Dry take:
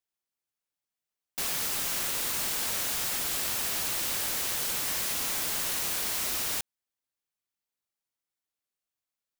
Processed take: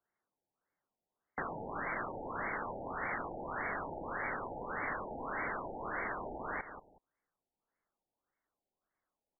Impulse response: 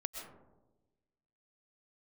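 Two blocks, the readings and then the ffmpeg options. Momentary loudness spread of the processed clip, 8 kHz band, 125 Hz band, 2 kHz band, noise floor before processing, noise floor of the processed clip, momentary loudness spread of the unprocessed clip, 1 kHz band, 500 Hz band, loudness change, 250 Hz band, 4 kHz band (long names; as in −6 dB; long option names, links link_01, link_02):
4 LU, below −40 dB, −2.5 dB, −2.0 dB, below −85 dBFS, below −85 dBFS, 2 LU, +2.5 dB, +2.0 dB, −12.0 dB, +0.5 dB, below −40 dB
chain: -filter_complex "[0:a]asubboost=boost=2.5:cutoff=57,aecho=1:1:185|370:0.188|0.0377,acrossover=split=260|1000[link_01][link_02][link_03];[link_01]acompressor=threshold=-55dB:ratio=4[link_04];[link_02]acompressor=threshold=-54dB:ratio=4[link_05];[link_03]acompressor=threshold=-34dB:ratio=4[link_06];[link_04][link_05][link_06]amix=inputs=3:normalize=0,lowshelf=frequency=99:gain=-10,afftfilt=real='re*lt(b*sr/1024,890*pow(2300/890,0.5+0.5*sin(2*PI*1.7*pts/sr)))':imag='im*lt(b*sr/1024,890*pow(2300/890,0.5+0.5*sin(2*PI*1.7*pts/sr)))':win_size=1024:overlap=0.75,volume=10.5dB"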